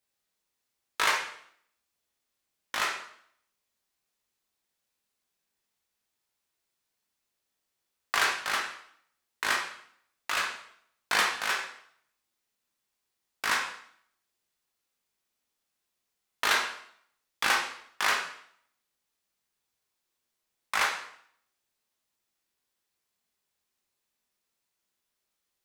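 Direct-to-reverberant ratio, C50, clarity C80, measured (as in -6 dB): 0.0 dB, 5.0 dB, 9.0 dB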